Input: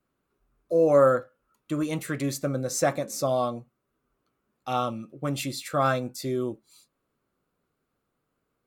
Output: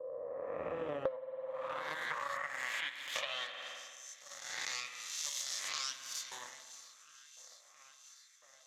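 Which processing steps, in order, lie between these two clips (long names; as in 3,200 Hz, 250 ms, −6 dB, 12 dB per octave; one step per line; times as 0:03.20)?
peak hold with a rise ahead of every peak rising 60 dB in 1.43 s
on a send: feedback echo with a high-pass in the loop 669 ms, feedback 81%, high-pass 160 Hz, level −19 dB
on the sum: auto-filter high-pass saw up 0.95 Hz 500–2,200 Hz
in parallel at −5.5 dB: hard clipping −16 dBFS, distortion −11 dB
on the sum: harmonic generator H 3 −11 dB, 4 −17 dB, 6 −14 dB, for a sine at −3.5 dBFS
0:02.24–0:03.14: notch filter 5,900 Hz, Q 6.1
band-pass filter sweep 490 Hz → 5,800 Hz, 0:00.86–0:03.98
EQ curve with evenly spaced ripples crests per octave 1.1, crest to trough 6 dB
spring reverb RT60 1.4 s, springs 52 ms, chirp 35 ms, DRR 10 dB
downward compressor 10 to 1, threshold −45 dBFS, peak gain reduction 34.5 dB
level +9.5 dB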